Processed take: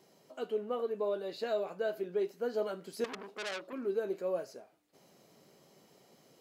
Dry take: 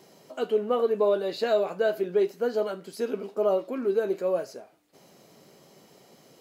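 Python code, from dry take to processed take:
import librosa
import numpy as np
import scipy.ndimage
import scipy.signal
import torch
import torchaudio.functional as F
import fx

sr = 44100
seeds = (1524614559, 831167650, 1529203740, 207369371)

y = fx.rider(x, sr, range_db=4, speed_s=0.5)
y = fx.transformer_sat(y, sr, knee_hz=3900.0, at=(3.04, 3.73))
y = F.gain(torch.from_numpy(y), -8.5).numpy()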